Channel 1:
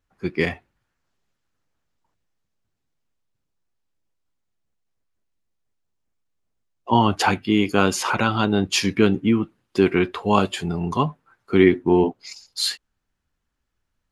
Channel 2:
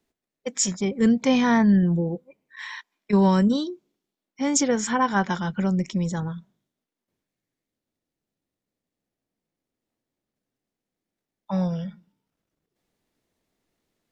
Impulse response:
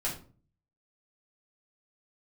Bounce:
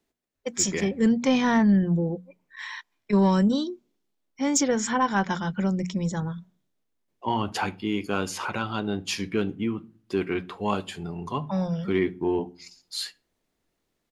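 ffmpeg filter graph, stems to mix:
-filter_complex "[0:a]adelay=350,volume=-9dB,asplit=2[a][b];[b]volume=-20dB[c];[1:a]volume=-0.5dB[d];[2:a]atrim=start_sample=2205[e];[c][e]afir=irnorm=-1:irlink=0[f];[a][d][f]amix=inputs=3:normalize=0,bandreject=f=60:t=h:w=6,bandreject=f=120:t=h:w=6,bandreject=f=180:t=h:w=6,bandreject=f=240:t=h:w=6,asoftclip=type=tanh:threshold=-10dB"

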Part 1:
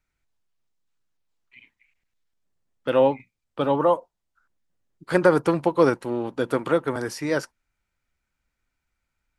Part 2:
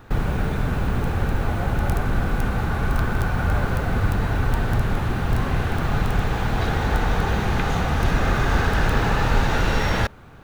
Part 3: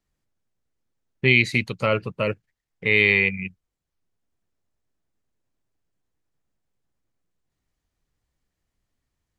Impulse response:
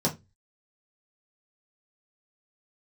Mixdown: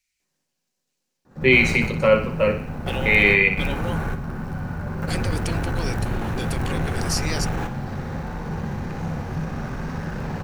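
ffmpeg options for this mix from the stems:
-filter_complex "[0:a]alimiter=limit=-13dB:level=0:latency=1,aexciter=amount=16:drive=3.1:freq=2.1k,highshelf=f=9.6k:g=-11.5,volume=-11dB,asplit=2[a][b];[1:a]asoftclip=type=tanh:threshold=-19dB,adelay=1250,volume=-1.5dB,asplit=3[c][d][e];[d]volume=-19.5dB[f];[e]volume=-10dB[g];[2:a]highpass=f=720:p=1,adelay=200,volume=0dB,asplit=3[h][i][j];[i]volume=-7.5dB[k];[j]volume=-7dB[l];[b]apad=whole_len=515435[m];[c][m]sidechaingate=range=-33dB:threshold=-57dB:ratio=16:detection=peak[n];[3:a]atrim=start_sample=2205[o];[f][k]amix=inputs=2:normalize=0[p];[p][o]afir=irnorm=-1:irlink=0[q];[g][l]amix=inputs=2:normalize=0,aecho=0:1:61|122|183|244|305|366|427|488:1|0.52|0.27|0.141|0.0731|0.038|0.0198|0.0103[r];[a][n][h][q][r]amix=inputs=5:normalize=0,equalizer=f=3.5k:t=o:w=0.41:g=-6.5"

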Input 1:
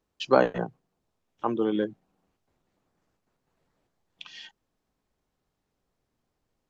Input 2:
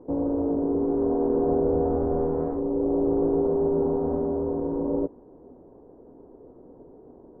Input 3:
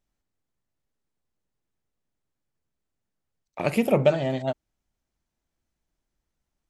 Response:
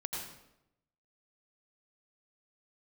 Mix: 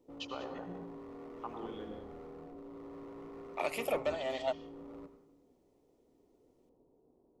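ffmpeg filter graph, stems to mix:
-filter_complex "[0:a]acompressor=threshold=-26dB:ratio=6,volume=-12dB,asplit=3[a][b][c];[b]volume=-4dB[d];[c]volume=-10dB[e];[1:a]volume=26dB,asoftclip=hard,volume=-26dB,volume=-14dB,asplit=2[f][g];[g]volume=-16.5dB[h];[2:a]asoftclip=type=tanh:threshold=-13dB,volume=-0.5dB,asplit=2[i][j];[j]apad=whole_len=326348[k];[f][k]sidechaingate=range=-9dB:threshold=-23dB:ratio=16:detection=peak[l];[a][i]amix=inputs=2:normalize=0,highpass=640,alimiter=limit=-21.5dB:level=0:latency=1:release=417,volume=0dB[m];[3:a]atrim=start_sample=2205[n];[d][h]amix=inputs=2:normalize=0[o];[o][n]afir=irnorm=-1:irlink=0[p];[e]aecho=0:1:194:1[q];[l][m][p][q]amix=inputs=4:normalize=0,bandreject=f=1.6k:w=6.2"

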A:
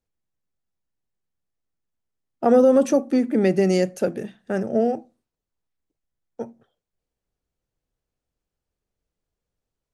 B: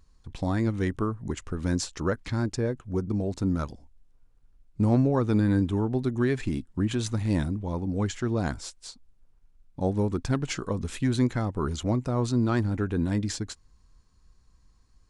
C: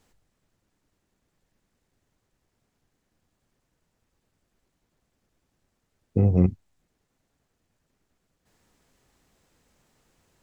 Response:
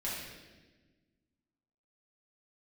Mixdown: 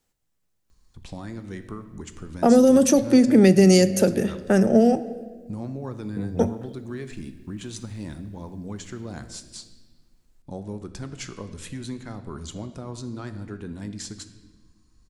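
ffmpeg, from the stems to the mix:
-filter_complex "[0:a]dynaudnorm=f=110:g=21:m=11dB,volume=0.5dB,asplit=2[a][b];[b]volume=-18dB[c];[1:a]acompressor=threshold=-36dB:ratio=2,adelay=700,volume=-3.5dB,asplit=2[d][e];[e]volume=-10.5dB[f];[2:a]volume=-11dB[g];[3:a]atrim=start_sample=2205[h];[c][f]amix=inputs=2:normalize=0[i];[i][h]afir=irnorm=-1:irlink=0[j];[a][d][g][j]amix=inputs=4:normalize=0,highshelf=f=4.3k:g=7.5,acrossover=split=280|3000[k][l][m];[l]acompressor=threshold=-18dB:ratio=6[n];[k][n][m]amix=inputs=3:normalize=0"

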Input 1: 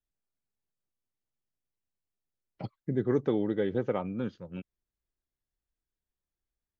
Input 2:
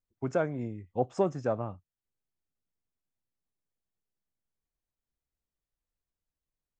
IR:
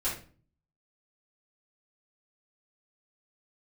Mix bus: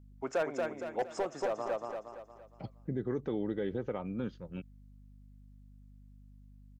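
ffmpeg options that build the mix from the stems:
-filter_complex "[0:a]aeval=exprs='val(0)+0.00251*(sin(2*PI*50*n/s)+sin(2*PI*2*50*n/s)/2+sin(2*PI*3*50*n/s)/3+sin(2*PI*4*50*n/s)/4+sin(2*PI*5*50*n/s)/5)':c=same,volume=-2dB[a];[1:a]highpass=460,volume=25.5dB,asoftclip=hard,volume=-25.5dB,volume=2.5dB,asplit=3[b][c][d];[c]volume=-4.5dB[e];[d]apad=whole_len=299559[f];[a][f]sidechaincompress=threshold=-50dB:ratio=8:attack=48:release=852[g];[e]aecho=0:1:232|464|696|928|1160|1392:1|0.43|0.185|0.0795|0.0342|0.0147[h];[g][b][h]amix=inputs=3:normalize=0,alimiter=level_in=1dB:limit=-24dB:level=0:latency=1:release=124,volume=-1dB"

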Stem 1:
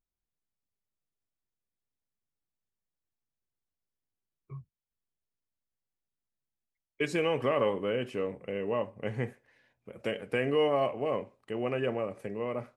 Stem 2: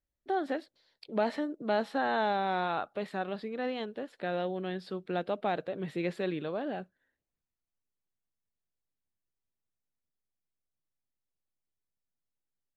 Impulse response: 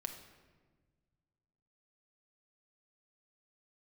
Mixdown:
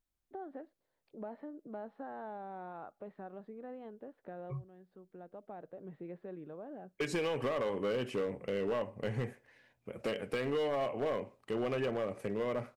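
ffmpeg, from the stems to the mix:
-filter_complex "[0:a]acompressor=threshold=-30dB:ratio=12,asoftclip=type=hard:threshold=-30.5dB,volume=2dB,asplit=2[a][b];[1:a]lowpass=1.1k,acompressor=threshold=-41dB:ratio=2,adelay=50,volume=-6dB[c];[b]apad=whole_len=565096[d];[c][d]sidechaincompress=threshold=-49dB:ratio=6:attack=16:release=1380[e];[a][e]amix=inputs=2:normalize=0"

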